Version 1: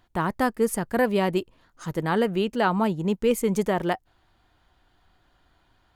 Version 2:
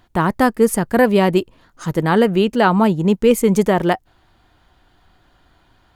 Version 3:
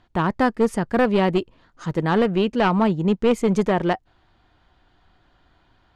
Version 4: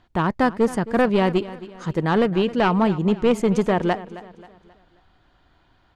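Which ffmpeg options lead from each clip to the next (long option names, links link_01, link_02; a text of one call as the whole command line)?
ffmpeg -i in.wav -af "equalizer=frequency=200:width_type=o:width=2.4:gain=2,volume=7.5dB" out.wav
ffmpeg -i in.wav -af "aeval=exprs='clip(val(0),-1,0.211)':channel_layout=same,lowpass=5300,volume=-4dB" out.wav
ffmpeg -i in.wav -af "aecho=1:1:267|534|801|1068:0.15|0.0613|0.0252|0.0103" out.wav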